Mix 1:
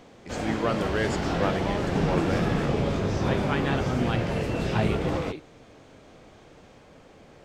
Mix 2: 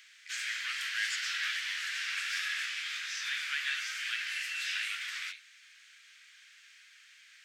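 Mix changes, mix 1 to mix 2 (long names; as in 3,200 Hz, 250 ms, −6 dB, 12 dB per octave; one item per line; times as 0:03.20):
background +4.5 dB
master: add Butterworth high-pass 1,600 Hz 48 dB per octave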